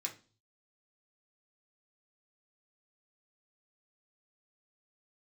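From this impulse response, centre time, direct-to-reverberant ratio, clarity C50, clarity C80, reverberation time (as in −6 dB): 13 ms, −0.5 dB, 13.0 dB, 19.5 dB, 0.35 s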